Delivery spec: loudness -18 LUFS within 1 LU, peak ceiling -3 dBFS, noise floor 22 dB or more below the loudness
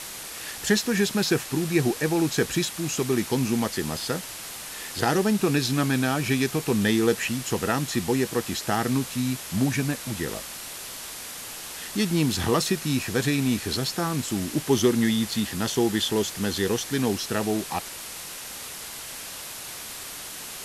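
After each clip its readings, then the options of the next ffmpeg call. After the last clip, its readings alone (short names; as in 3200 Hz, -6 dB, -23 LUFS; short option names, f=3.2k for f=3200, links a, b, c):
noise floor -38 dBFS; noise floor target -48 dBFS; loudness -26.0 LUFS; peak -7.5 dBFS; loudness target -18.0 LUFS
-> -af "afftdn=nr=10:nf=-38"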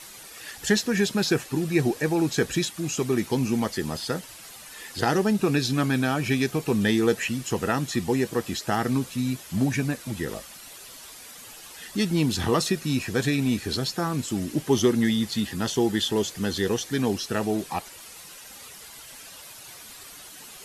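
noise floor -45 dBFS; noise floor target -48 dBFS
-> -af "afftdn=nr=6:nf=-45"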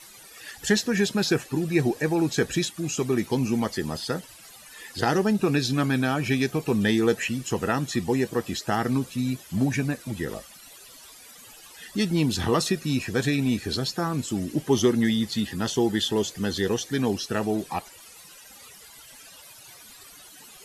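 noise floor -48 dBFS; loudness -25.5 LUFS; peak -8.0 dBFS; loudness target -18.0 LUFS
-> -af "volume=7.5dB,alimiter=limit=-3dB:level=0:latency=1"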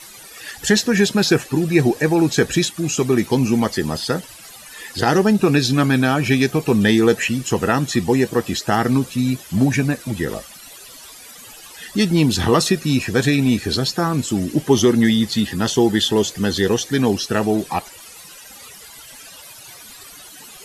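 loudness -18.0 LUFS; peak -3.0 dBFS; noise floor -41 dBFS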